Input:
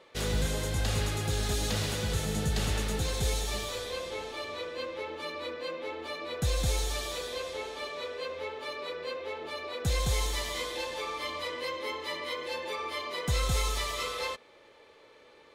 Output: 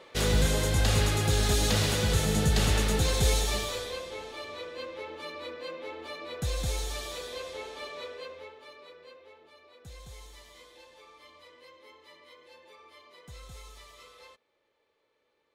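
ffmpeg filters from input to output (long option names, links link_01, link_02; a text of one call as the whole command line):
ffmpeg -i in.wav -af "volume=5dB,afade=type=out:start_time=3.38:duration=0.68:silence=0.421697,afade=type=out:start_time=8.02:duration=0.54:silence=0.375837,afade=type=out:start_time=8.56:duration=0.95:silence=0.421697" out.wav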